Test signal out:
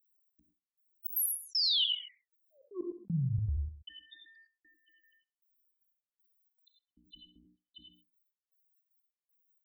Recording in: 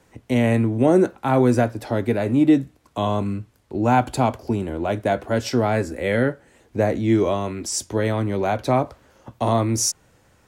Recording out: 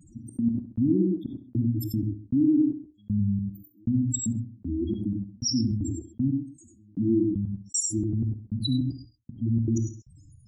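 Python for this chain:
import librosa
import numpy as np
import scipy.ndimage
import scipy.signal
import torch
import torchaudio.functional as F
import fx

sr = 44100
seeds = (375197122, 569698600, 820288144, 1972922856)

y = scipy.signal.sosfilt(scipy.signal.cheby1(5, 1.0, [330.0, 2900.0], 'bandstop', fs=sr, output='sos'), x)
y = F.preemphasis(torch.from_numpy(y), 0.8).numpy()
y = fx.hum_notches(y, sr, base_hz=60, count=5)
y = fx.dynamic_eq(y, sr, hz=2600.0, q=2.5, threshold_db=-55.0, ratio=4.0, max_db=4)
y = fx.leveller(y, sr, passes=3)
y = fx.spec_topn(y, sr, count=4)
y = fx.step_gate(y, sr, bpm=155, pattern='xxx.x...', floor_db=-60.0, edge_ms=4.5)
y = fx.echo_feedback(y, sr, ms=66, feedback_pct=30, wet_db=-22)
y = fx.rev_gated(y, sr, seeds[0], gate_ms=120, shape='rising', drr_db=6.0)
y = fx.env_flatten(y, sr, amount_pct=50)
y = y * librosa.db_to_amplitude(-1.5)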